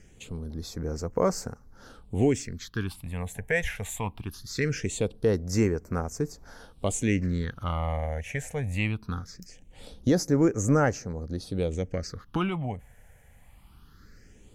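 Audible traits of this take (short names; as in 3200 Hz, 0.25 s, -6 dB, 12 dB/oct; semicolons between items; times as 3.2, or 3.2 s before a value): phasing stages 6, 0.21 Hz, lowest notch 320–3500 Hz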